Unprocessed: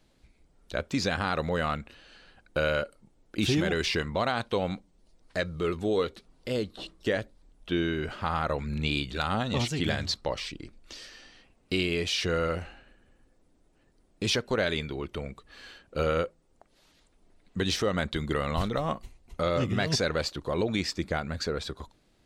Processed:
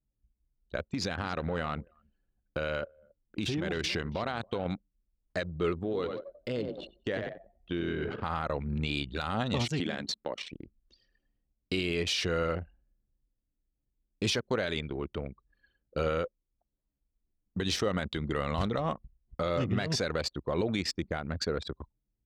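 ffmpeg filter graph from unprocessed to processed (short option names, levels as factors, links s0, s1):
-filter_complex "[0:a]asettb=1/sr,asplit=3[s0][s1][s2];[s0]atrim=end=0.844[s3];[s1]atrim=start=0.84:end=4.66,asetpts=PTS-STARTPTS,afade=t=in:d=0.004:c=qsin,afade=t=out:st=3.816:d=0.004:c=qsin,acompressor=threshold=0.0447:ratio=12:attack=3.2:release=140:knee=1:detection=peak,aecho=1:1:276:0.2,atrim=end_sample=168462[s4];[s2]atrim=start=4.656[s5];[s3][s4]acrossfade=d=0.004:c1=hsin:c2=qsin[s6];[s6][s5]acrossfade=d=0.004:c1=qsin:c2=hsin,asettb=1/sr,asplit=3[s7][s8][s9];[s7]atrim=end=5.734[s10];[s8]atrim=start=5.73:end=8.23,asetpts=PTS-STARTPTS,afade=t=in:d=0.004:c=qsin,afade=t=out:st=2.496:d=0.004:c=qsin,asplit=7[s11][s12][s13][s14][s15][s16][s17];[s12]adelay=91,afreqshift=31,volume=0.422[s18];[s13]adelay=182,afreqshift=62,volume=0.224[s19];[s14]adelay=273,afreqshift=93,volume=0.119[s20];[s15]adelay=364,afreqshift=124,volume=0.0631[s21];[s16]adelay=455,afreqshift=155,volume=0.0331[s22];[s17]adelay=546,afreqshift=186,volume=0.0176[s23];[s11][s18][s19][s20][s21][s22][s23]amix=inputs=7:normalize=0,atrim=end_sample=110250,acompressor=threshold=0.0355:ratio=3:attack=3.2:release=140:knee=1:detection=peak[s24];[s9]atrim=start=8.226[s25];[s10][s24]acrossfade=d=0.004:c1=hsin:c2=qsin[s26];[s26][s25]acrossfade=d=0.004:c1=qsin:c2=hsin,asettb=1/sr,asplit=3[s27][s28][s29];[s27]atrim=end=9.804[s30];[s28]atrim=start=9.8:end=10.51,asetpts=PTS-STARTPTS,afade=t=in:d=0.004:c=qsin,afade=t=out:st=0.706:d=0.004:c=qsin,lowshelf=f=140:t=q:w=1.5:g=-14,bandreject=f=4800:w=8.1,acompressor=threshold=0.0355:ratio=3:attack=3.2:release=140:knee=1:detection=peak[s31];[s29]atrim=start=10.506[s32];[s30][s31]acrossfade=d=0.004:c1=hsin:c2=qsin[s33];[s33][s32]acrossfade=d=0.004:c1=qsin:c2=hsin,anlmdn=3.98,highpass=51,alimiter=limit=0.106:level=0:latency=1:release=81"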